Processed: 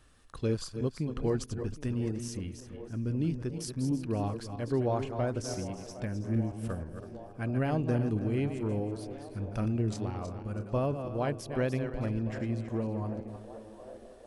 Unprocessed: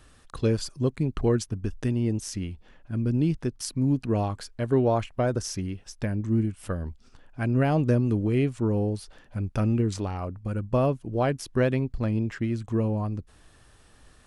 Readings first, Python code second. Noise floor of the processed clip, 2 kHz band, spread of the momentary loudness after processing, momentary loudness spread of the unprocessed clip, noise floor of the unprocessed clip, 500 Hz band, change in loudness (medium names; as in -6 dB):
-50 dBFS, -6.0 dB, 11 LU, 10 LU, -56 dBFS, -6.0 dB, -6.0 dB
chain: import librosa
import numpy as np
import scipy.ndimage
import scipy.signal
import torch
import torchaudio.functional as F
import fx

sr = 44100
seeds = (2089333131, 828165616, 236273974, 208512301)

y = fx.reverse_delay_fb(x, sr, ms=163, feedback_pct=50, wet_db=-8.0)
y = fx.echo_banded(y, sr, ms=763, feedback_pct=84, hz=620.0, wet_db=-13.5)
y = y * 10.0 ** (-7.0 / 20.0)